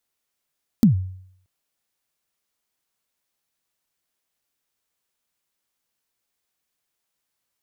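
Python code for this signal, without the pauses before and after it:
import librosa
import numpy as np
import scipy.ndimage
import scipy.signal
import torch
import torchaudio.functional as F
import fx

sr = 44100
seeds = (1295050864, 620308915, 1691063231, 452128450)

y = fx.drum_kick(sr, seeds[0], length_s=0.63, level_db=-7.5, start_hz=250.0, end_hz=93.0, sweep_ms=117.0, decay_s=0.66, click=True)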